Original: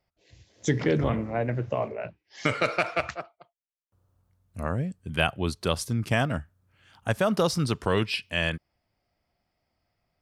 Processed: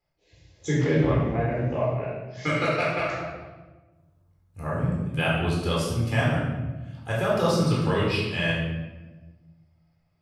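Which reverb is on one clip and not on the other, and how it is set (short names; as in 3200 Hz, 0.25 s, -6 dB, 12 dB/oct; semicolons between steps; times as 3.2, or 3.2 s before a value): shoebox room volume 740 m³, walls mixed, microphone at 4 m; gain -8 dB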